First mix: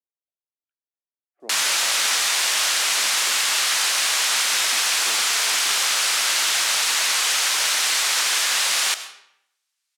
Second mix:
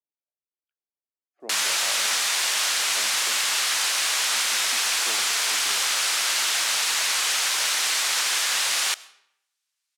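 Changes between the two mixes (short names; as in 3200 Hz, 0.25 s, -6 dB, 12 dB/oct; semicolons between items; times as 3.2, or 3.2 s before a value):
speech: remove air absorption 420 m; background: send -11.5 dB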